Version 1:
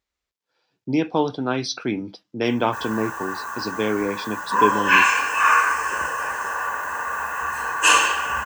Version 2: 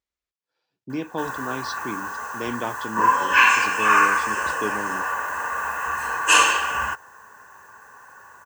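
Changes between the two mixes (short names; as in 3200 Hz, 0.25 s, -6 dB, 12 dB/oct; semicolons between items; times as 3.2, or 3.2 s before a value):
speech -8.0 dB; background: entry -1.55 s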